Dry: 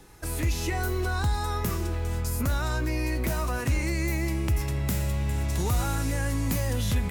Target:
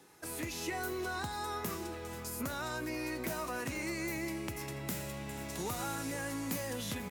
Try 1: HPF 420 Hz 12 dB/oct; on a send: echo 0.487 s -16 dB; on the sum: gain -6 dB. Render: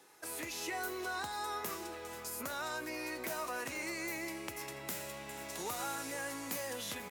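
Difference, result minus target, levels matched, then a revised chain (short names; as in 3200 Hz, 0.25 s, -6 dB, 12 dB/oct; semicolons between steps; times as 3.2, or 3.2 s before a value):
250 Hz band -5.0 dB
HPF 200 Hz 12 dB/oct; on a send: echo 0.487 s -16 dB; on the sum: gain -6 dB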